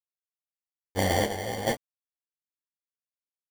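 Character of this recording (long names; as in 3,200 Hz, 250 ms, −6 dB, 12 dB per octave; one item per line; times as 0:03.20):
a quantiser's noise floor 8 bits, dither none
chopped level 1.2 Hz, depth 65%, duty 50%
aliases and images of a low sample rate 1,300 Hz, jitter 0%
a shimmering, thickened sound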